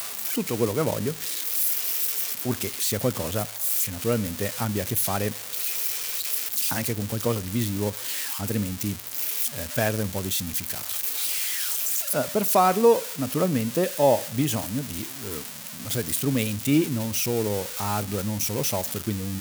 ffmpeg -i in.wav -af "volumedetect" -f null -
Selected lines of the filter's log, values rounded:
mean_volume: -26.0 dB
max_volume: -7.4 dB